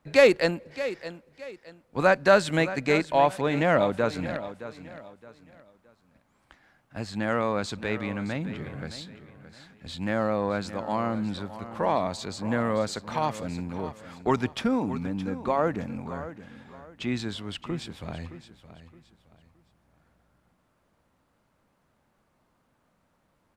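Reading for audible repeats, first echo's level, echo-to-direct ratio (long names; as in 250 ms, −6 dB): 3, −13.5 dB, −13.0 dB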